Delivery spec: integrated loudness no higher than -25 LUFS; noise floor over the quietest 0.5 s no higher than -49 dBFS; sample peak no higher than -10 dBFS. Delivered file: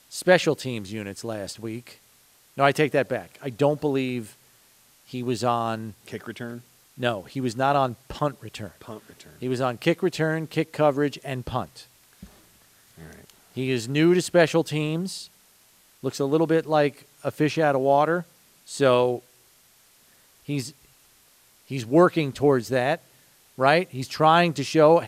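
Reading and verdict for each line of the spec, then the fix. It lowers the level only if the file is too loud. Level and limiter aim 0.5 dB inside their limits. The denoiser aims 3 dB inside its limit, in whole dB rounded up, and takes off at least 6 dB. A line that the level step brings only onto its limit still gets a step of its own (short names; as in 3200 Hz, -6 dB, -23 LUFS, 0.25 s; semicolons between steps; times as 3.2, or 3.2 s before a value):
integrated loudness -24.0 LUFS: fail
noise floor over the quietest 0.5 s -58 dBFS: OK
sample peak -3.5 dBFS: fail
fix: gain -1.5 dB; limiter -10.5 dBFS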